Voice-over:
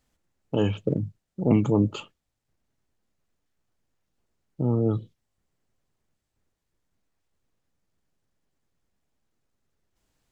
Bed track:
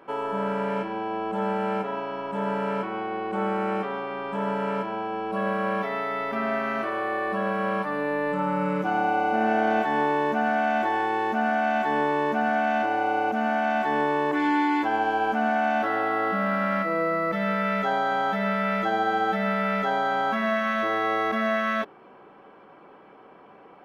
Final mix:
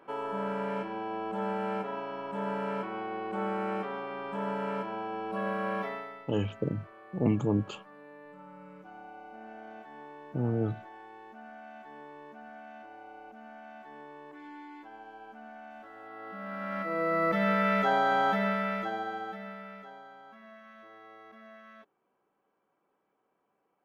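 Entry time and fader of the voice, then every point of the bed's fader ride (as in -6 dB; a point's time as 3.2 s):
5.75 s, -6.0 dB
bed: 5.87 s -6 dB
6.32 s -24 dB
15.94 s -24 dB
17.24 s -1 dB
18.3 s -1 dB
20.19 s -27 dB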